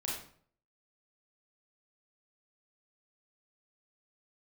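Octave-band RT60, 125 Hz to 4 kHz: 0.70, 0.60, 0.55, 0.50, 0.45, 0.40 s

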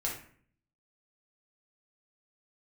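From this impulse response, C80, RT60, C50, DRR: 9.5 dB, 0.50 s, 5.0 dB, -3.5 dB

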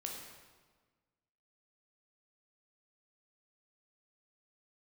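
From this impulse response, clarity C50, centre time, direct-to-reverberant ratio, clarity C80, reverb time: 2.5 dB, 63 ms, -0.5 dB, 4.5 dB, 1.4 s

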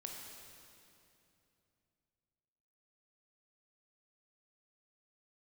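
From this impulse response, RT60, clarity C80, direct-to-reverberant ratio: 2.8 s, 2.5 dB, 0.0 dB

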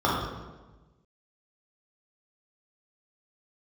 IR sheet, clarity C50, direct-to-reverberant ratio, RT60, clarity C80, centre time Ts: 0.5 dB, -6.5 dB, 1.2 s, 3.0 dB, 73 ms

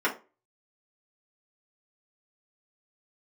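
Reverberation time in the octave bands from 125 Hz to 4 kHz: 0.30, 0.30, 0.35, 0.30, 0.25, 0.20 s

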